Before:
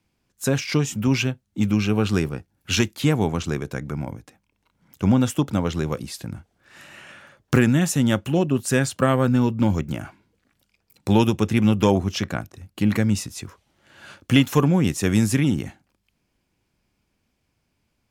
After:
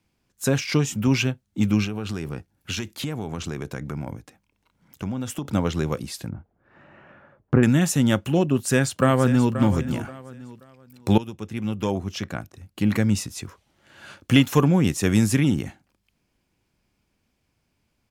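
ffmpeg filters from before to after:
-filter_complex "[0:a]asettb=1/sr,asplit=3[a][b][c];[a]atrim=end=1.844[d];[b]atrim=start=1.84:end=5.45,asetpts=PTS-STARTPTS,afade=t=in:d=0.004:c=qsin,afade=t=out:st=3.606:d=0.004:c=qsin,acompressor=threshold=-25dB:ratio=6:attack=3.2:release=140:knee=1:detection=peak[e];[c]atrim=start=5.446[f];[d][e]acrossfade=d=0.004:c1=hsin:c2=qsin[g];[g][f]acrossfade=d=0.004:c1=qsin:c2=hsin,asettb=1/sr,asplit=3[h][i][j];[h]atrim=end=6.294[k];[i]atrim=start=6.29:end=7.63,asetpts=PTS-STARTPTS,afade=t=in:d=0.004:c=qsin,afade=t=out:st=1.336:d=0.004:c=qsin,lowpass=1.1k[l];[j]atrim=start=7.626[m];[k][l]acrossfade=d=0.004:c1=hsin:c2=qsin[n];[n][m]acrossfade=d=0.004:c1=qsin:c2=hsin,asplit=2[o][p];[p]afade=t=in:st=8.51:d=0.01,afade=t=out:st=9.53:d=0.01,aecho=0:1:530|1060|1590:0.266073|0.0798218|0.0239465[q];[o][q]amix=inputs=2:normalize=0,asplit=2[r][s];[r]atrim=end=11.18,asetpts=PTS-STARTPTS,afade=t=out:st=11.176:d=0.004:c=hsin:silence=0.11885[t];[s]atrim=start=11.18,asetpts=PTS-STARTPTS,afade=t=in:d=1.99:silence=0.11885[u];[t][u]concat=n=2:v=0:a=1"

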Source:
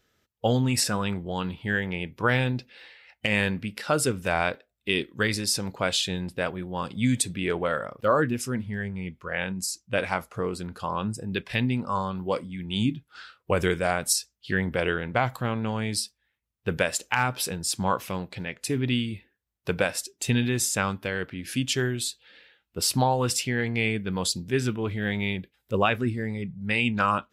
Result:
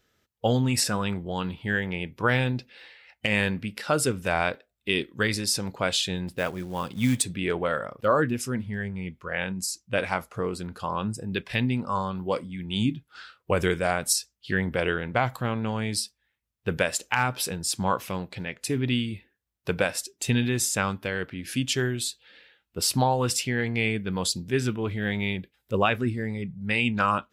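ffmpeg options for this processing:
-filter_complex "[0:a]asplit=3[a][b][c];[a]afade=t=out:st=6.27:d=0.02[d];[b]acrusher=bits=5:mode=log:mix=0:aa=0.000001,afade=t=in:st=6.27:d=0.02,afade=t=out:st=7.23:d=0.02[e];[c]afade=t=in:st=7.23:d=0.02[f];[d][e][f]amix=inputs=3:normalize=0"

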